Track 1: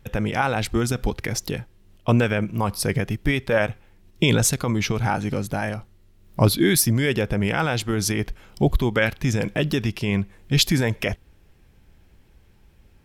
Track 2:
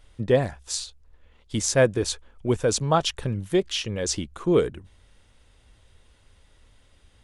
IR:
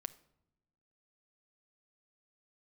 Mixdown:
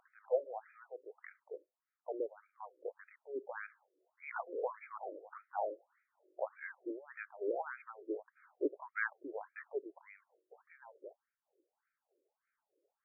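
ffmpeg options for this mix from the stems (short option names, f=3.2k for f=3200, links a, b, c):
-filter_complex "[0:a]lowpass=1.3k,acompressor=mode=upward:threshold=-41dB:ratio=2.5,volume=-4.5dB,afade=t=in:st=2.74:d=0.69:silence=0.421697,afade=t=out:st=9.86:d=0.7:silence=0.354813[a];[1:a]highpass=f=600:w=0.5412,highpass=f=600:w=1.3066,volume=-4dB,asplit=3[b][c][d];[b]atrim=end=1.51,asetpts=PTS-STARTPTS,afade=t=out:st=1.506:d=0.004:c=hsin[e];[c]atrim=start=1.51:end=4.17,asetpts=PTS-STARTPTS,volume=0[f];[d]atrim=start=4.17,asetpts=PTS-STARTPTS,afade=t=in:d=0.004:c=hsin[g];[e][f][g]concat=n=3:v=0:a=1[h];[a][h]amix=inputs=2:normalize=0,tremolo=f=3.2:d=0.67,afftfilt=real='re*between(b*sr/1024,420*pow(1800/420,0.5+0.5*sin(2*PI*1.7*pts/sr))/1.41,420*pow(1800/420,0.5+0.5*sin(2*PI*1.7*pts/sr))*1.41)':imag='im*between(b*sr/1024,420*pow(1800/420,0.5+0.5*sin(2*PI*1.7*pts/sr))/1.41,420*pow(1800/420,0.5+0.5*sin(2*PI*1.7*pts/sr))*1.41)':win_size=1024:overlap=0.75"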